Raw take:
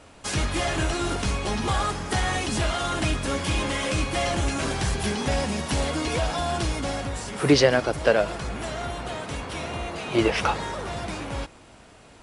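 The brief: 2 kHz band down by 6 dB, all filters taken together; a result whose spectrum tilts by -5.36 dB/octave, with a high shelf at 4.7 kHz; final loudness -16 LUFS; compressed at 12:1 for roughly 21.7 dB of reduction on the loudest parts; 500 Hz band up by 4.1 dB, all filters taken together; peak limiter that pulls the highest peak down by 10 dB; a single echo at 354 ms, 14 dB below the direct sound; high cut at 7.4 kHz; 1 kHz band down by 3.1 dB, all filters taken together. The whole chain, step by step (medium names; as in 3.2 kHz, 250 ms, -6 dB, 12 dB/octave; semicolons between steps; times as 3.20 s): low-pass 7.4 kHz; peaking EQ 500 Hz +7 dB; peaking EQ 1 kHz -6.5 dB; peaking EQ 2 kHz -5.5 dB; treble shelf 4.7 kHz -3.5 dB; compression 12:1, threshold -31 dBFS; peak limiter -30 dBFS; delay 354 ms -14 dB; trim +23 dB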